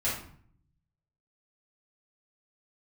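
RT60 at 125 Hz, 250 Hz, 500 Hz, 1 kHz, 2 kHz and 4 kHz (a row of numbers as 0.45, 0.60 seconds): 1.3, 0.85, 0.55, 0.55, 0.50, 0.40 seconds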